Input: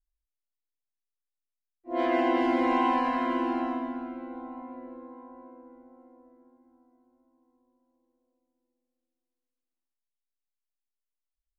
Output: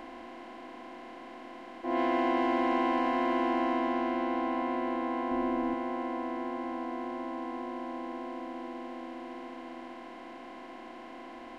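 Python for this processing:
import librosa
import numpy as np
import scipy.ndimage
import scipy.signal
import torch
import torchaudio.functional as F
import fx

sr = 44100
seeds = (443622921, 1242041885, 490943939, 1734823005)

y = fx.bin_compress(x, sr, power=0.2)
y = fx.low_shelf(y, sr, hz=230.0, db=11.0, at=(5.31, 5.74))
y = F.gain(torch.from_numpy(y), -6.5).numpy()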